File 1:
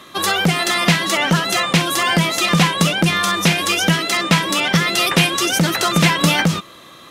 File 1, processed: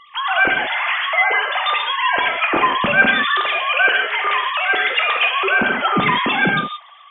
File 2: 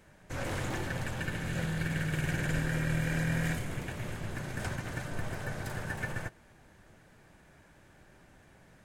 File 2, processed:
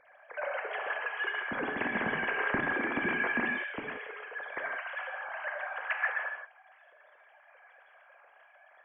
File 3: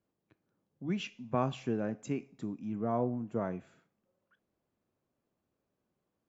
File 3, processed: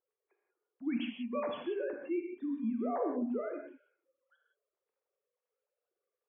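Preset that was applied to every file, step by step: sine-wave speech; non-linear reverb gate 0.2 s flat, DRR 2 dB; gain -3 dB

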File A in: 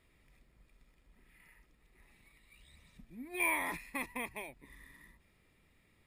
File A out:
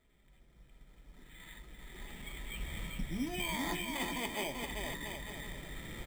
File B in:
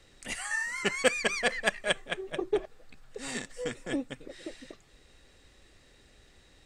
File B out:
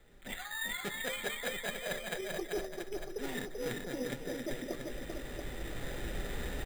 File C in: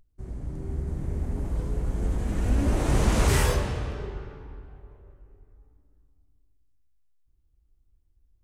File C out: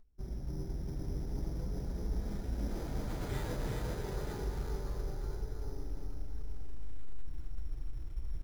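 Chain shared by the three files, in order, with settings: recorder AGC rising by 9 dB/s; LPF 2800 Hz 6 dB/oct; notch 1100 Hz, Q 8.8; de-hum 74.87 Hz, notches 8; reverse; compressor 8:1, threshold -34 dBFS; reverse; short-mantissa float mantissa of 4-bit; flange 0.46 Hz, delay 4.6 ms, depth 2.4 ms, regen -49%; bouncing-ball echo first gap 0.39 s, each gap 0.75×, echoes 5; careless resampling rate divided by 8×, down filtered, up hold; gain +3 dB

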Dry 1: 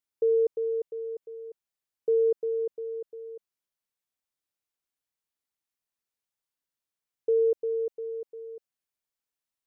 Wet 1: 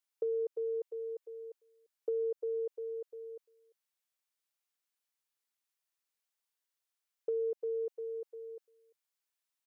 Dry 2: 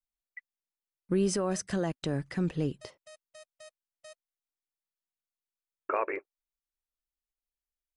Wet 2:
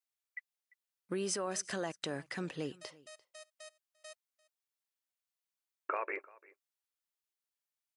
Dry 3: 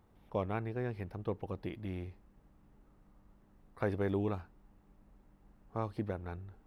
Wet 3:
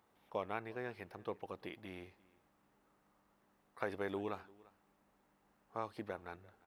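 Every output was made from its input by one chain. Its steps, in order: HPF 820 Hz 6 dB/oct; compressor, threshold -33 dBFS; on a send: echo 0.345 s -23 dB; on the sum: gain +1.5 dB

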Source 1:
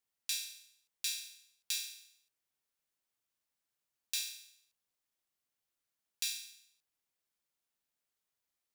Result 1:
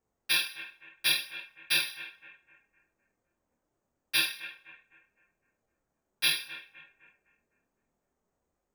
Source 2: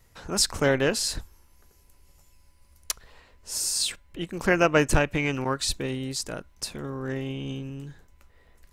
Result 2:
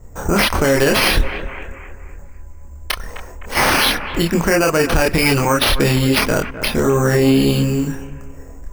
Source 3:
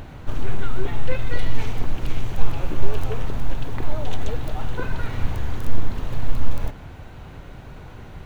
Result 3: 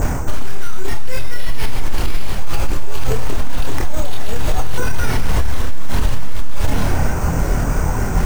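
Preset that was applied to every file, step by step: reverse; compressor 12:1, threshold -24 dBFS; reverse; low-pass opened by the level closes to 490 Hz, open at -26 dBFS; careless resampling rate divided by 6×, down none, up hold; analogue delay 0.255 s, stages 4096, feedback 39%, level -16.5 dB; chorus voices 6, 0.59 Hz, delay 27 ms, depth 2.9 ms; maximiser +27 dB; mismatched tape noise reduction encoder only; gain -4.5 dB

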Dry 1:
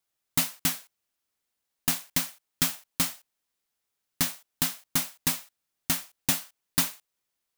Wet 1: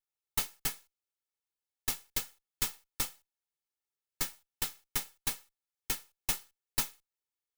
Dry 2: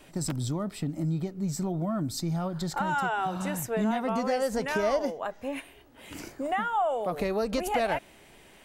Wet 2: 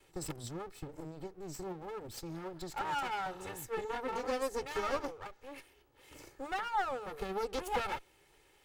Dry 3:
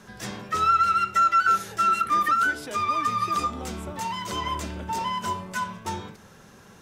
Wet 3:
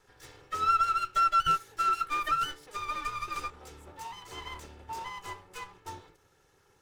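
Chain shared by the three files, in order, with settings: minimum comb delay 2.3 ms; upward expander 1.5:1, over -37 dBFS; gain -4 dB

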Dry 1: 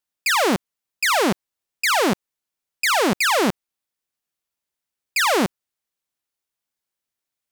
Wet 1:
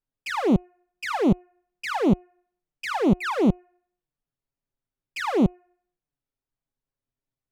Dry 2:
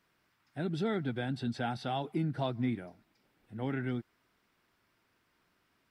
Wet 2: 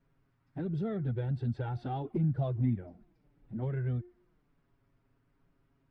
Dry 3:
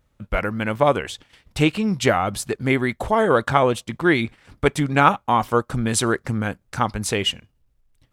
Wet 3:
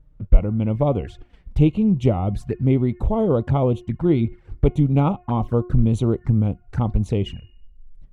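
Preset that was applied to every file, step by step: tilt -4.5 dB/oct; de-hum 359.5 Hz, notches 8; in parallel at -1.5 dB: compressor 6:1, threshold -27 dBFS; on the sum: envelope flanger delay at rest 7.4 ms, full sweep at -10 dBFS; gain -7 dB

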